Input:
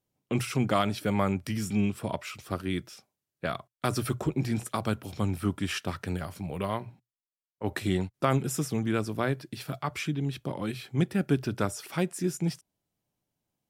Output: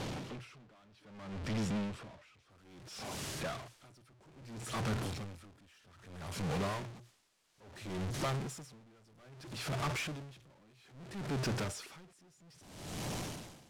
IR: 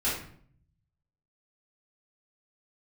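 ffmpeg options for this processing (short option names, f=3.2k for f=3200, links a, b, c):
-af "aeval=exprs='val(0)+0.5*0.0473*sgn(val(0))':c=same,asetnsamples=n=441:p=0,asendcmd='2.5 lowpass f 7800',lowpass=4.4k,asoftclip=type=tanh:threshold=-27dB,aeval=exprs='val(0)*pow(10,-30*(0.5-0.5*cos(2*PI*0.61*n/s))/20)':c=same,volume=-3.5dB"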